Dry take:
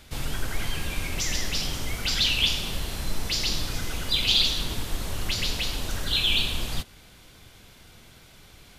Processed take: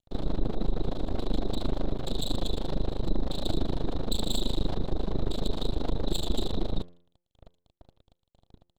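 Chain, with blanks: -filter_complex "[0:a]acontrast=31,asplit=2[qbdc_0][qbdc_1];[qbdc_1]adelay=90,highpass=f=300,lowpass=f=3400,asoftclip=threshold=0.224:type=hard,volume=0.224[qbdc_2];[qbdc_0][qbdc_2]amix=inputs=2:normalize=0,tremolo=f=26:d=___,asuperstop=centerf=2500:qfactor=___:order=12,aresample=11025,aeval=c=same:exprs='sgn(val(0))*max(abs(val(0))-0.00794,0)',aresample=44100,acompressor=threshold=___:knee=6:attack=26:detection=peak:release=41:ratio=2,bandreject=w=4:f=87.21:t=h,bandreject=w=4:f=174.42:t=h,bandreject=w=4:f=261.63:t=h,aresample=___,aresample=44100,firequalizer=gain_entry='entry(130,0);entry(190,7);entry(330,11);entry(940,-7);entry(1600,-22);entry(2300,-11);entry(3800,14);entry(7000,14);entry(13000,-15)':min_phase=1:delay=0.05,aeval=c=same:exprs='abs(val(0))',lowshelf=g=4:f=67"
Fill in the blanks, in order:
0.857, 0.94, 0.0398, 8000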